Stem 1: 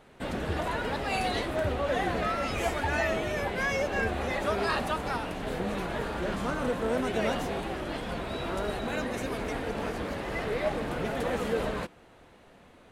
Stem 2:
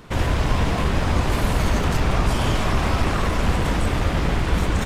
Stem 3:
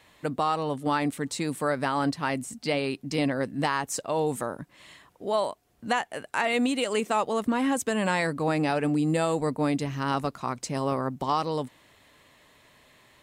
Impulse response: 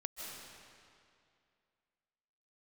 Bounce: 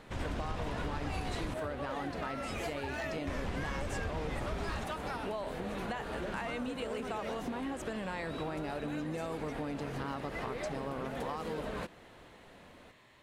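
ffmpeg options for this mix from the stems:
-filter_complex "[0:a]aeval=exprs='0.0891*(abs(mod(val(0)/0.0891+3,4)-2)-1)':channel_layout=same,volume=-1dB[link_01];[1:a]lowpass=9400,volume=-15dB,asplit=3[link_02][link_03][link_04];[link_02]atrim=end=1.54,asetpts=PTS-STARTPTS,afade=type=out:start_time=1.536:duration=0.004:curve=hsin[link_05];[link_03]atrim=start=1.54:end=3.27,asetpts=PTS-STARTPTS,volume=0[link_06];[link_04]atrim=start=3.27,asetpts=PTS-STARTPTS,afade=type=in:duration=0.004:curve=hsin[link_07];[link_05][link_06][link_07]concat=n=3:v=0:a=1[link_08];[2:a]highshelf=frequency=6500:gain=-11.5,volume=-2.5dB[link_09];[link_01][link_09]amix=inputs=2:normalize=0,acompressor=threshold=-34dB:ratio=6,volume=0dB[link_10];[link_08][link_10]amix=inputs=2:normalize=0,acompressor=threshold=-32dB:ratio=6"

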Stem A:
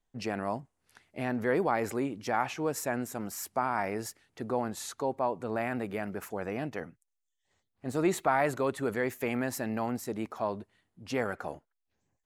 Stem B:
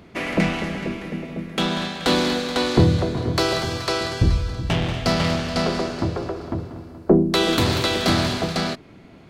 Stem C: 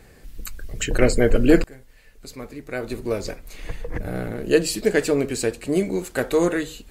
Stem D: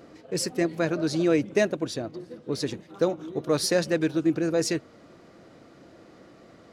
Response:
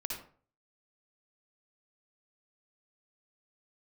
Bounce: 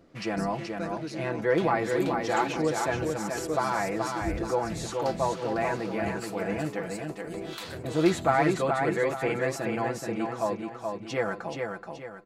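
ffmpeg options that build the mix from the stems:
-filter_complex "[0:a]lowpass=7400,aecho=1:1:6:0.82,volume=0.5dB,asplit=3[link_01][link_02][link_03];[link_02]volume=-4.5dB[link_04];[1:a]acrossover=split=770[link_05][link_06];[link_05]aeval=exprs='val(0)*(1-1/2+1/2*cos(2*PI*2.3*n/s))':channel_layout=same[link_07];[link_06]aeval=exprs='val(0)*(1-1/2-1/2*cos(2*PI*2.3*n/s))':channel_layout=same[link_08];[link_07][link_08]amix=inputs=2:normalize=0,volume=-14.5dB[link_09];[2:a]highpass=450,acompressor=threshold=-23dB:ratio=6,adelay=1550,volume=-15dB,asplit=2[link_10][link_11];[link_11]volume=-13.5dB[link_12];[3:a]volume=-10.5dB,asplit=2[link_13][link_14];[link_14]volume=-20.5dB[link_15];[link_03]apad=whole_len=296735[link_16];[link_13][link_16]sidechaincompress=threshold=-32dB:ratio=8:attack=9.9:release=448[link_17];[link_04][link_12][link_15]amix=inputs=3:normalize=0,aecho=0:1:427|854|1281|1708|2135:1|0.39|0.152|0.0593|0.0231[link_18];[link_01][link_09][link_10][link_17][link_18]amix=inputs=5:normalize=0"

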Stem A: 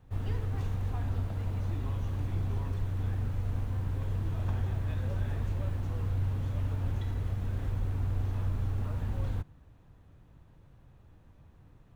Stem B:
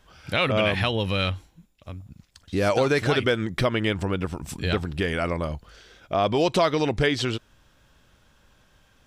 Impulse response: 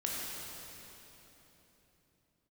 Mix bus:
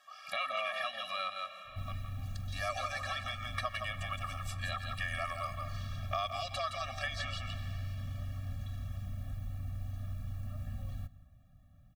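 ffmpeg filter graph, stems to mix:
-filter_complex "[0:a]highshelf=frequency=9900:gain=11,adelay=1650,volume=-4dB,asplit=2[link_01][link_02];[link_02]volume=-22.5dB[link_03];[1:a]highpass=frequency=1000:width_type=q:width=2.3,volume=0dB,asplit=3[link_04][link_05][link_06];[link_05]volume=-18dB[link_07];[link_06]volume=-7dB[link_08];[2:a]atrim=start_sample=2205[link_09];[link_07][link_09]afir=irnorm=-1:irlink=0[link_10];[link_03][link_08]amix=inputs=2:normalize=0,aecho=0:1:166:1[link_11];[link_01][link_04][link_10][link_11]amix=inputs=4:normalize=0,acrossover=split=1500|4600[link_12][link_13][link_14];[link_12]acompressor=threshold=-36dB:ratio=4[link_15];[link_13]acompressor=threshold=-38dB:ratio=4[link_16];[link_14]acompressor=threshold=-48dB:ratio=4[link_17];[link_15][link_16][link_17]amix=inputs=3:normalize=0,afftfilt=real='re*eq(mod(floor(b*sr/1024/270),2),0)':imag='im*eq(mod(floor(b*sr/1024/270),2),0)':win_size=1024:overlap=0.75"

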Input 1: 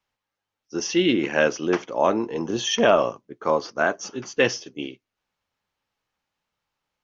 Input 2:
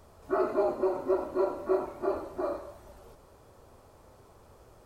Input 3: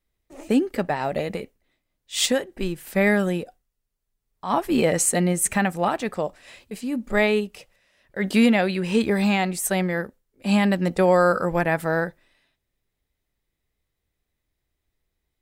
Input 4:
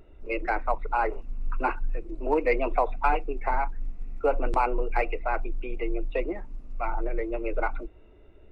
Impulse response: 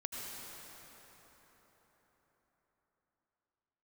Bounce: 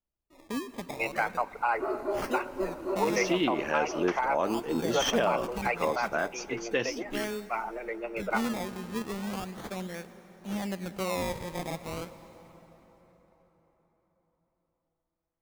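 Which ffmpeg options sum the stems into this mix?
-filter_complex "[0:a]adelay=2350,volume=-5dB[link_01];[1:a]highshelf=frequency=8800:gain=8.5,adelay=1500,volume=-4.5dB[link_02];[2:a]acrusher=samples=21:mix=1:aa=0.000001:lfo=1:lforange=21:lforate=0.37,volume=-16dB,asplit=2[link_03][link_04];[link_04]volume=-10.5dB[link_05];[3:a]highpass=frequency=1000:poles=1,adelay=700,volume=2dB,asplit=2[link_06][link_07];[link_07]volume=-18.5dB[link_08];[4:a]atrim=start_sample=2205[link_09];[link_05][link_08]amix=inputs=2:normalize=0[link_10];[link_10][link_09]afir=irnorm=-1:irlink=0[link_11];[link_01][link_02][link_03][link_06][link_11]amix=inputs=5:normalize=0,alimiter=limit=-16dB:level=0:latency=1:release=210"

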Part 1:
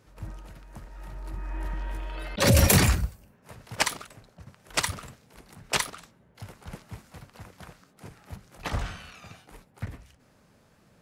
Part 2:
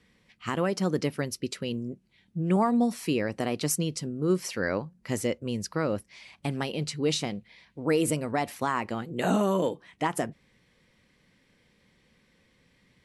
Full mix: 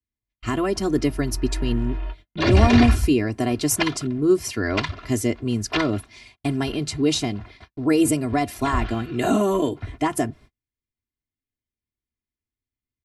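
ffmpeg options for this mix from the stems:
ffmpeg -i stem1.wav -i stem2.wav -filter_complex "[0:a]lowpass=frequency=4200:width=0.5412,lowpass=frequency=4200:width=1.3066,volume=-1dB[link_01];[1:a]bass=frequency=250:gain=11,treble=frequency=4000:gain=3,acrossover=split=130[link_02][link_03];[link_02]acompressor=threshold=-37dB:ratio=6[link_04];[link_04][link_03]amix=inputs=2:normalize=0,volume=0.5dB,asplit=2[link_05][link_06];[link_06]apad=whole_len=485973[link_07];[link_01][link_07]sidechaingate=range=-24dB:threshold=-52dB:ratio=16:detection=peak[link_08];[link_08][link_05]amix=inputs=2:normalize=0,agate=range=-38dB:threshold=-47dB:ratio=16:detection=peak,lowshelf=frequency=210:gain=3,aecho=1:1:2.9:0.92" out.wav

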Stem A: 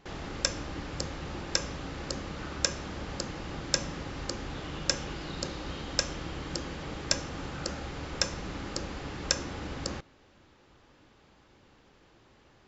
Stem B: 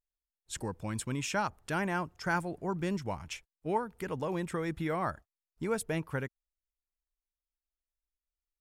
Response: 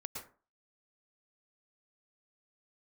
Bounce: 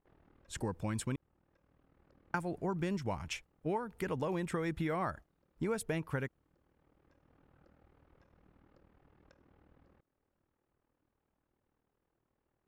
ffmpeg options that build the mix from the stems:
-filter_complex "[0:a]lowpass=2600,acompressor=threshold=-45dB:ratio=2.5,tremolo=f=39:d=0.788,volume=-17dB[link_01];[1:a]adynamicequalizer=threshold=0.00447:dfrequency=1600:dqfactor=0.7:tfrequency=1600:tqfactor=0.7:attack=5:release=100:ratio=0.375:range=3.5:mode=boostabove:tftype=highshelf,volume=2.5dB,asplit=3[link_02][link_03][link_04];[link_02]atrim=end=1.16,asetpts=PTS-STARTPTS,afade=type=out:start_time=1.156:duration=0.004:curve=hsin[link_05];[link_03]atrim=start=1.16:end=2.34,asetpts=PTS-STARTPTS,volume=0[link_06];[link_04]atrim=start=2.34,asetpts=PTS-STARTPTS,afade=type=in:duration=0.004:curve=hsin[link_07];[link_05][link_06][link_07]concat=n=3:v=0:a=1,asplit=2[link_08][link_09];[link_09]apad=whole_len=559018[link_10];[link_01][link_10]sidechaincompress=threshold=-35dB:ratio=8:attack=6.5:release=1500[link_11];[link_11][link_08]amix=inputs=2:normalize=0,highshelf=frequency=2100:gain=-10,acompressor=threshold=-31dB:ratio=6"

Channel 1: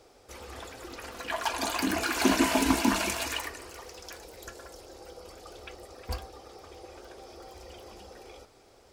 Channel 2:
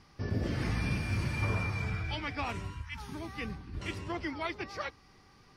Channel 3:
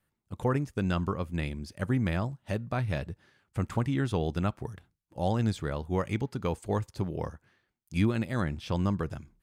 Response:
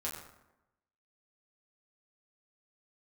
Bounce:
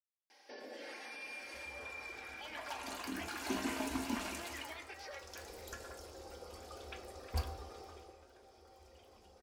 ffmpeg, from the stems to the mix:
-filter_complex "[0:a]adelay=1250,volume=-7.5dB,afade=type=in:start_time=5.08:duration=0.42:silence=0.298538,afade=type=out:start_time=7.8:duration=0.37:silence=0.281838,asplit=2[link_01][link_02];[link_02]volume=-3dB[link_03];[1:a]highpass=frequency=440:width=0.5412,highpass=frequency=440:width=1.3066,aecho=1:1:3.7:0.47,alimiter=level_in=8dB:limit=-24dB:level=0:latency=1,volume=-8dB,adelay=300,volume=-1dB,asplit=2[link_04][link_05];[link_05]volume=-14dB[link_06];[link_04]asuperstop=centerf=1200:order=4:qfactor=2.8,acompressor=threshold=-49dB:ratio=6,volume=0dB[link_07];[3:a]atrim=start_sample=2205[link_08];[link_03][link_06]amix=inputs=2:normalize=0[link_09];[link_09][link_08]afir=irnorm=-1:irlink=0[link_10];[link_01][link_07][link_10]amix=inputs=3:normalize=0"

